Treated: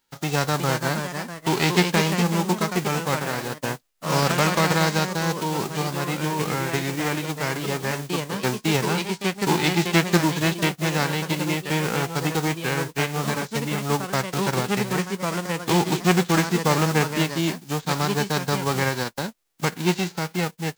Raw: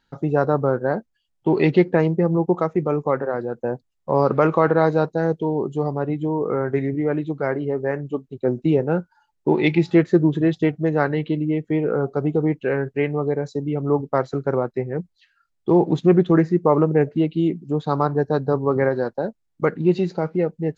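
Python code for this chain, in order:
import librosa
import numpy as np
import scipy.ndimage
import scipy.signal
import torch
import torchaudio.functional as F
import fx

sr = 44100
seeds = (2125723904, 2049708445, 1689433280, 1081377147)

y = fx.envelope_flatten(x, sr, power=0.3)
y = fx.echo_pitch(y, sr, ms=390, semitones=2, count=2, db_per_echo=-6.0)
y = F.gain(torch.from_numpy(y), -4.0).numpy()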